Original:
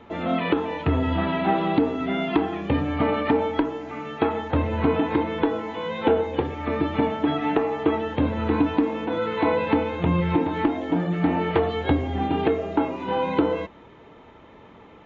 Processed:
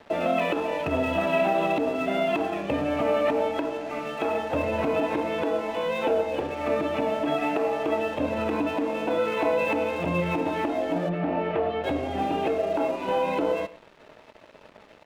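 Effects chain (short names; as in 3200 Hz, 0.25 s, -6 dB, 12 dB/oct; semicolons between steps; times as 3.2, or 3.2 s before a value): HPF 190 Hz 6 dB/oct; in parallel at 0 dB: compressor, threshold -31 dBFS, peak gain reduction 14 dB; on the sum: limiter -14.5 dBFS, peak gain reduction 8.5 dB; small resonant body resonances 610/2600 Hz, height 13 dB, ringing for 30 ms; crossover distortion -40 dBFS; 11.09–11.84 air absorption 280 m; outdoor echo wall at 18 m, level -18 dB; gain -4 dB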